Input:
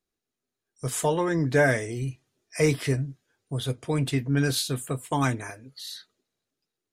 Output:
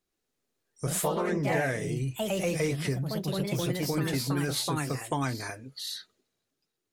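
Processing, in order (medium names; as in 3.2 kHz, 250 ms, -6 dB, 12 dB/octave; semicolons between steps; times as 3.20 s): ever faster or slower copies 119 ms, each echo +2 st, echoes 3; compression 3:1, threshold -30 dBFS, peak gain reduction 12.5 dB; trim +2 dB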